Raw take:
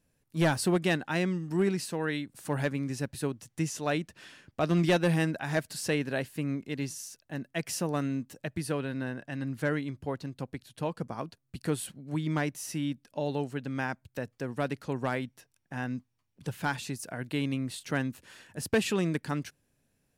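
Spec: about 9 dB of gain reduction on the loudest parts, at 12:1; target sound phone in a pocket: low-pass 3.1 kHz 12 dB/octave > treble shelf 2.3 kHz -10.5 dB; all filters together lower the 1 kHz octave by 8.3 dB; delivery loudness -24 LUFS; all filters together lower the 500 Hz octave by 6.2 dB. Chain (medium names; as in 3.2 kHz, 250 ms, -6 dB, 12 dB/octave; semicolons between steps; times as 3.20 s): peaking EQ 500 Hz -6 dB; peaking EQ 1 kHz -7 dB; compression 12:1, threshold -32 dBFS; low-pass 3.1 kHz 12 dB/octave; treble shelf 2.3 kHz -10.5 dB; trim +16 dB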